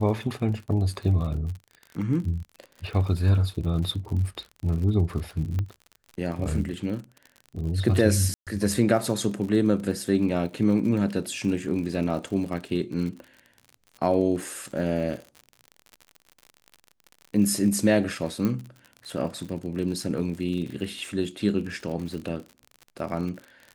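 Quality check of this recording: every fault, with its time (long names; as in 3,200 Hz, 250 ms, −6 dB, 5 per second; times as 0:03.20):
surface crackle 56 per second −34 dBFS
0:05.59: click −18 dBFS
0:08.34–0:08.47: drop-out 127 ms
0:18.45: click −15 dBFS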